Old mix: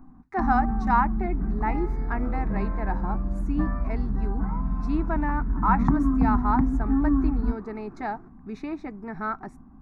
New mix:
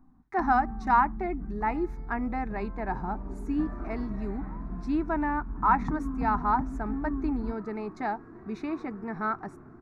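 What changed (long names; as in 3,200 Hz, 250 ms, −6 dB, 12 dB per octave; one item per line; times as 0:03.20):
first sound −10.5 dB
second sound: entry +1.55 s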